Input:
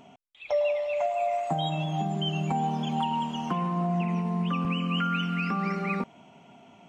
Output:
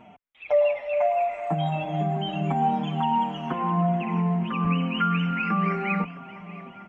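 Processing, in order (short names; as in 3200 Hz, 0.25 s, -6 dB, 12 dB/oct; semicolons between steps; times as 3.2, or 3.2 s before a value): resonant high shelf 3200 Hz -12.5 dB, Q 1.5; on a send: swung echo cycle 1.098 s, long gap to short 1.5:1, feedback 33%, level -16 dB; on the sum: endless flanger 6 ms -2.2 Hz; gain +5.5 dB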